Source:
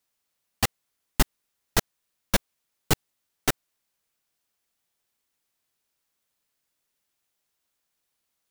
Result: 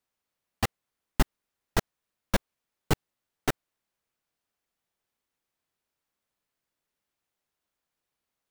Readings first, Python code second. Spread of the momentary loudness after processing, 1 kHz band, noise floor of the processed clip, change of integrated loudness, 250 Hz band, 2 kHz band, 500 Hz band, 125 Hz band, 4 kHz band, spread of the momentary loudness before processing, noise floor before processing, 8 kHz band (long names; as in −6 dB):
2 LU, −2.0 dB, below −85 dBFS, −4.0 dB, −1.0 dB, −3.5 dB, −1.5 dB, −1.0 dB, −6.5 dB, 1 LU, −80 dBFS, −9.0 dB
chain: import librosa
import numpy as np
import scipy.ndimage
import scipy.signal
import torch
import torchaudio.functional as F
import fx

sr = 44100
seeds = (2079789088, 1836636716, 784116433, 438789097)

y = fx.high_shelf(x, sr, hz=2900.0, db=-9.0)
y = F.gain(torch.from_numpy(y), -1.0).numpy()